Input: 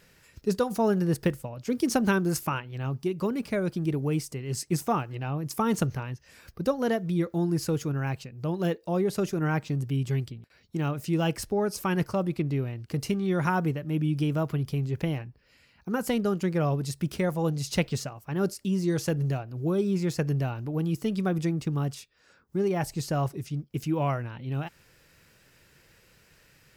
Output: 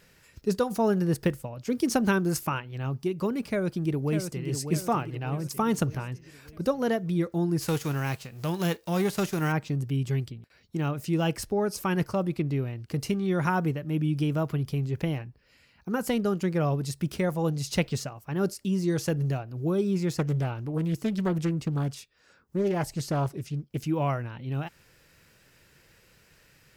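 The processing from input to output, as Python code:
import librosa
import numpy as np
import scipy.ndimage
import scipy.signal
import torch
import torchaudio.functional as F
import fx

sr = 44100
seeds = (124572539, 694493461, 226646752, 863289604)

y = fx.echo_throw(x, sr, start_s=3.47, length_s=1.0, ms=600, feedback_pct=50, wet_db=-7.5)
y = fx.envelope_flatten(y, sr, power=0.6, at=(7.6, 9.51), fade=0.02)
y = fx.doppler_dist(y, sr, depth_ms=0.37, at=(20.17, 23.85))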